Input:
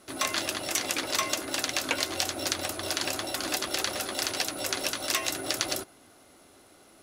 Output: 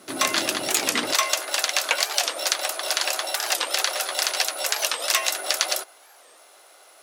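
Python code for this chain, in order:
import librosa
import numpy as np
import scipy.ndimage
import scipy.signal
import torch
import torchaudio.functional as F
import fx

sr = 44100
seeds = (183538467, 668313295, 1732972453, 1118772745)

y = fx.quant_dither(x, sr, seeds[0], bits=12, dither='none')
y = fx.highpass(y, sr, hz=fx.steps((0.0, 130.0), (1.13, 530.0)), slope=24)
y = fx.record_warp(y, sr, rpm=45.0, depth_cents=250.0)
y = F.gain(torch.from_numpy(y), 6.5).numpy()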